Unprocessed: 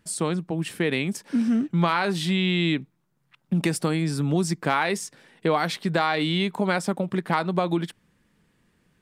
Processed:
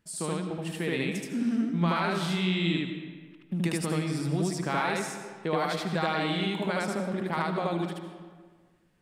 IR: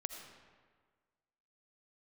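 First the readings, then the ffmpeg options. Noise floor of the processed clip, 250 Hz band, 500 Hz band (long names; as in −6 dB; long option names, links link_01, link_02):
−61 dBFS, −4.5 dB, −4.5 dB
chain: -filter_complex "[0:a]asplit=2[link_01][link_02];[1:a]atrim=start_sample=2205,adelay=76[link_03];[link_02][link_03]afir=irnorm=-1:irlink=0,volume=3dB[link_04];[link_01][link_04]amix=inputs=2:normalize=0,volume=-8.5dB"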